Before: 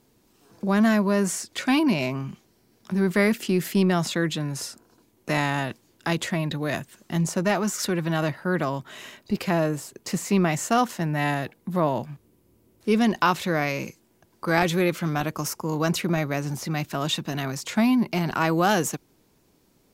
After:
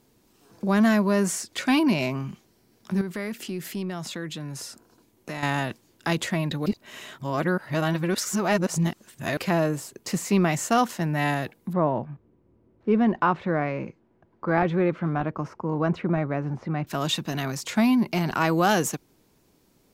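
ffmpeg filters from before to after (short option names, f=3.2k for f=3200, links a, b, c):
-filter_complex "[0:a]asettb=1/sr,asplit=3[a][b][c];[a]atrim=end=3.014[d];[b]atrim=start=3.01:end=5.43,asetpts=PTS-STARTPTS,afade=t=in:d=0.004:c=qsin,afade=t=out:st=2.416:d=0.004:c=qsin,acompressor=threshold=-36dB:ratio=2:attack=3.2:release=140:knee=1:detection=peak[e];[c]atrim=start=5.426[f];[d][e]acrossfade=d=0.004:c1=hsin:c2=qsin[g];[g][f]acrossfade=d=0.004:c1=qsin:c2=hsin,asettb=1/sr,asplit=3[h][i][j];[h]atrim=end=11.734[k];[i]atrim=start=11.73:end=16.87,asetpts=PTS-STARTPTS,afade=t=in:d=0.004:c=qsin,afade=t=out:st=5.136:d=0.004:c=qsin,lowpass=1.5k[l];[j]atrim=start=16.866[m];[k][l]acrossfade=d=0.004:c1=hsin:c2=qsin[n];[n][m]acrossfade=d=0.004:c1=qsin:c2=hsin,asplit=3[o][p][q];[o]atrim=end=6.662[r];[p]atrim=start=6.658:end=9.372,asetpts=PTS-STARTPTS,areverse[s];[q]atrim=start=9.368[t];[r][s]acrossfade=d=0.004:c1=hsin:c2=hsin[u];[u][t]acrossfade=d=0.004:c1=hsin:c2=hsin"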